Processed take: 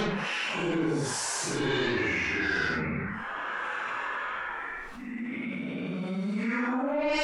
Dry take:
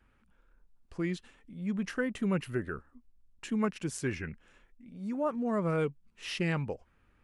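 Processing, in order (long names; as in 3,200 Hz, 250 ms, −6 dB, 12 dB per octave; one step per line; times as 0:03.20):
band-pass filter sweep 630 Hz → 3,400 Hz, 0:03.24–0:07.04
sine wavefolder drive 18 dB, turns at −24.5 dBFS
extreme stretch with random phases 4.6×, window 0.10 s, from 0:03.68
envelope flattener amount 70%
level −1 dB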